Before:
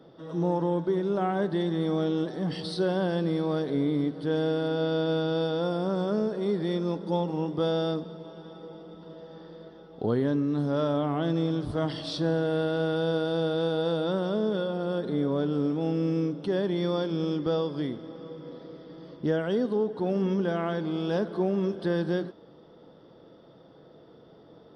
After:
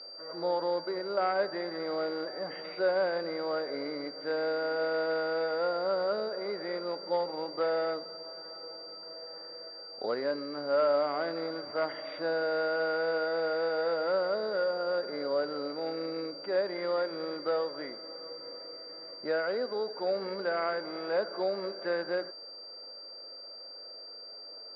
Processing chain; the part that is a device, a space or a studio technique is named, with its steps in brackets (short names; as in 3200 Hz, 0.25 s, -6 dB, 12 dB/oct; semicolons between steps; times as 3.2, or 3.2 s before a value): toy sound module (decimation joined by straight lines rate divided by 4×; pulse-width modulation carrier 4700 Hz; speaker cabinet 560–4300 Hz, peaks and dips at 570 Hz +9 dB, 1400 Hz +8 dB, 2100 Hz +10 dB, 3200 Hz -4 dB); gain -2 dB